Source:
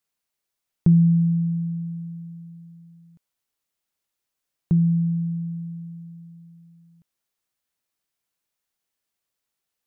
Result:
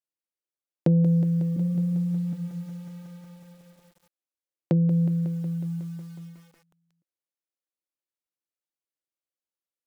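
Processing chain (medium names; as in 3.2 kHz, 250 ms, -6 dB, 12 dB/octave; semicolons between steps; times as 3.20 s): 1.56–2.33 s: formants replaced by sine waves; gate -44 dBFS, range -23 dB; Bessel high-pass 190 Hz, order 4; in parallel at 0 dB: compression 8:1, threshold -31 dBFS, peak gain reduction 14.5 dB; on the sum: saturation -16 dBFS, distortion -17 dB; small resonant body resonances 330/520 Hz, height 12 dB, ringing for 45 ms; low-pass that closes with the level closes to 360 Hz, closed at -18.5 dBFS; bit-crushed delay 183 ms, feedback 80%, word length 8-bit, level -12.5 dB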